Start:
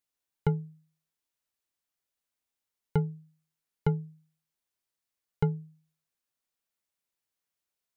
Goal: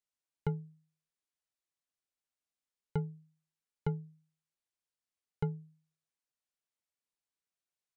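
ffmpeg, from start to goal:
-af "aresample=22050,aresample=44100,volume=0.447"

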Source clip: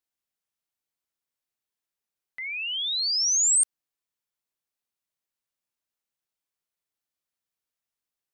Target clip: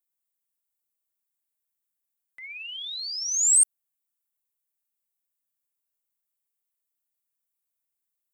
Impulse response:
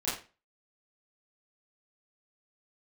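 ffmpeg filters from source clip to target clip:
-af "aexciter=amount=4.1:drive=4.3:freq=7300,aphaser=in_gain=1:out_gain=1:delay=4.5:decay=0.22:speed=1.1:type=triangular,volume=0.447"

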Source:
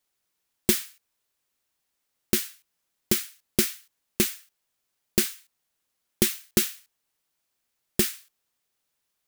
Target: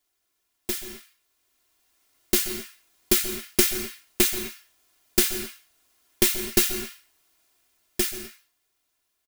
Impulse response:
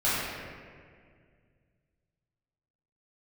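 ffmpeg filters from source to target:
-filter_complex "[0:a]alimiter=limit=0.211:level=0:latency=1:release=494,aeval=exprs='clip(val(0),-1,0.0316)':c=same,aecho=1:1:2.9:0.6,asplit=2[s0][s1];[1:a]atrim=start_sample=2205,atrim=end_sample=6615,adelay=125[s2];[s1][s2]afir=irnorm=-1:irlink=0,volume=0.1[s3];[s0][s3]amix=inputs=2:normalize=0,dynaudnorm=f=260:g=13:m=4.22,volume=1.12"

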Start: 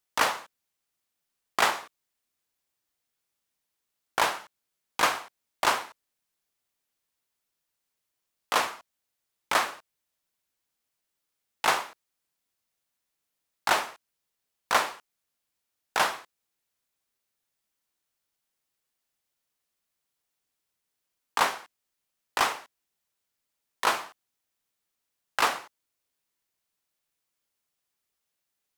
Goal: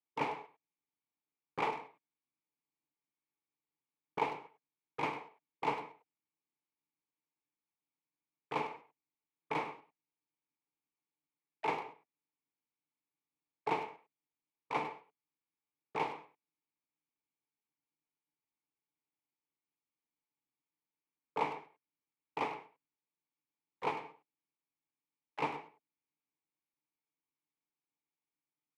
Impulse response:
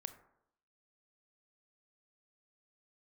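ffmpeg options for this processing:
-filter_complex "[0:a]asplit=3[s0][s1][s2];[s0]bandpass=f=300:t=q:w=8,volume=1[s3];[s1]bandpass=f=870:t=q:w=8,volume=0.501[s4];[s2]bandpass=f=2240:t=q:w=8,volume=0.355[s5];[s3][s4][s5]amix=inputs=3:normalize=0,asplit=2[s6][s7];[s7]adelay=100,highpass=300,lowpass=3400,asoftclip=type=hard:threshold=0.0282,volume=0.282[s8];[s6][s8]amix=inputs=2:normalize=0,asplit=4[s9][s10][s11][s12];[s10]asetrate=22050,aresample=44100,atempo=2,volume=0.562[s13];[s11]asetrate=33038,aresample=44100,atempo=1.33484,volume=0.224[s14];[s12]asetrate=37084,aresample=44100,atempo=1.18921,volume=0.178[s15];[s9][s13][s14][s15]amix=inputs=4:normalize=0,volume=1.19"

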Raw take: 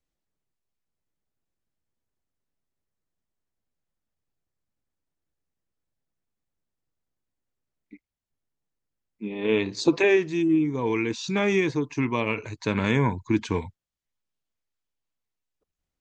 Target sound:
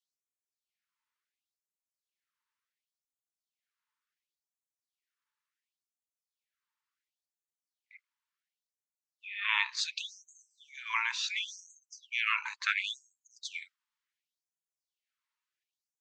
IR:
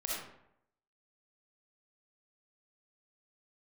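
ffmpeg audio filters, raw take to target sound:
-af "afftfilt=real='re*lt(hypot(re,im),0.141)':imag='im*lt(hypot(re,im),0.141)':win_size=1024:overlap=0.75,aemphasis=mode=reproduction:type=75kf,afftfilt=real='re*gte(b*sr/1024,820*pow(6300/820,0.5+0.5*sin(2*PI*0.7*pts/sr)))':imag='im*gte(b*sr/1024,820*pow(6300/820,0.5+0.5*sin(2*PI*0.7*pts/sr)))':win_size=1024:overlap=0.75,volume=2.66"

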